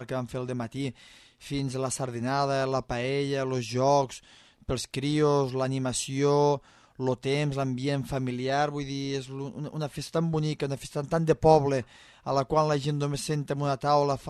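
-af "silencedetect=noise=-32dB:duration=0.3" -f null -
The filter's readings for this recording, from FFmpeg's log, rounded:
silence_start: 0.90
silence_end: 1.47 | silence_duration: 0.57
silence_start: 4.16
silence_end: 4.69 | silence_duration: 0.53
silence_start: 6.57
silence_end: 7.00 | silence_duration: 0.43
silence_start: 11.81
silence_end: 12.27 | silence_duration: 0.45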